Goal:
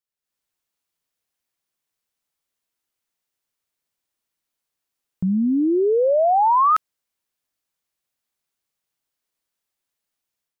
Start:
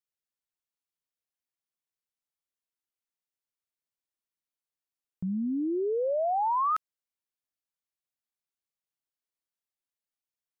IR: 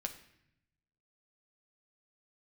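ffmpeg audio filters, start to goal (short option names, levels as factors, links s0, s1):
-af "dynaudnorm=f=180:g=3:m=3.35"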